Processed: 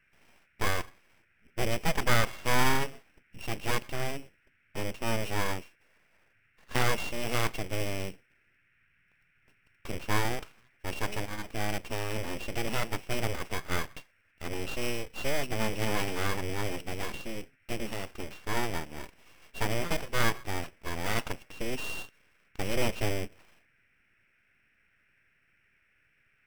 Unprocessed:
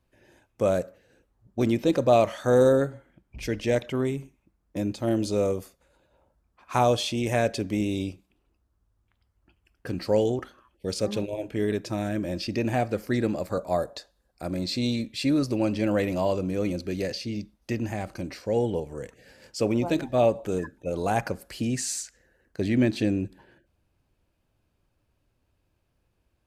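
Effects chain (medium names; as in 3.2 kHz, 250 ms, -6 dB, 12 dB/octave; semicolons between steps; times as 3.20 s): sorted samples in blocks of 16 samples; full-wave rectifier; band noise 1.4–2.6 kHz -68 dBFS; trim -2.5 dB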